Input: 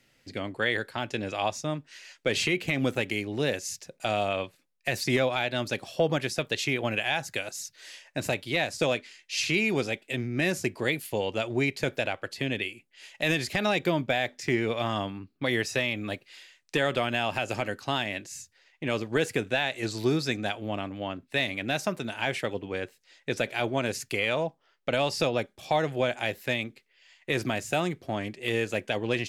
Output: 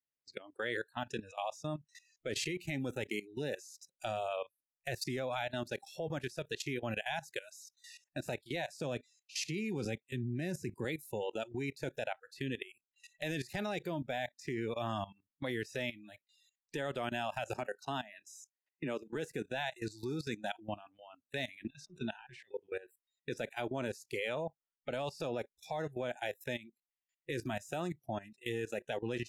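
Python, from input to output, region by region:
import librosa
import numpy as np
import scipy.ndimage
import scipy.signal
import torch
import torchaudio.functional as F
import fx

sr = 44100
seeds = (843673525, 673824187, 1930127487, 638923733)

y = fx.chain(x, sr, fx.highpass(hz=100.0, slope=12),
    fx.low_shelf(hz=190.0, db=12.0), at=(8.8, 10.85))
y = fx.chain(y, sr, fx.highpass(hz=130.0, slope=24),
    fx.high_shelf(hz=2300.0, db=-4.0),
    fx.band_squash(depth_pct=40), at=(17.54, 19.15))
y = fx.chain(y, sr, fx.lowpass(hz=4800.0, slope=12),
    fx.over_compress(threshold_db=-34.0, ratio=-0.5), at=(21.64, 22.49))
y = fx.noise_reduce_blind(y, sr, reduce_db=29)
y = fx.dynamic_eq(y, sr, hz=2700.0, q=0.93, threshold_db=-43.0, ratio=4.0, max_db=-6)
y = fx.level_steps(y, sr, step_db=17)
y = y * librosa.db_to_amplitude(-2.5)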